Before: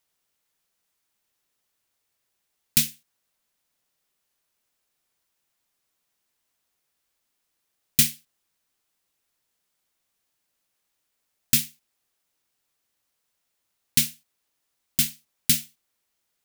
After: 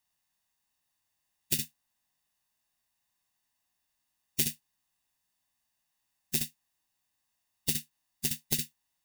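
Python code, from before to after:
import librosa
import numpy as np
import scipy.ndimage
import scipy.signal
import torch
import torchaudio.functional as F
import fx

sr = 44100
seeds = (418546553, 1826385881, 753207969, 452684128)

y = x + 0.59 * np.pad(x, (int(1.1 * sr / 1000.0), 0))[:len(x)]
y = y + 10.0 ** (-7.5 / 20.0) * np.pad(y, (int(122 * sr / 1000.0), 0))[:len(y)]
y = fx.stretch_vocoder(y, sr, factor=0.55)
y = fx.transformer_sat(y, sr, knee_hz=2400.0)
y = y * 10.0 ** (-3.5 / 20.0)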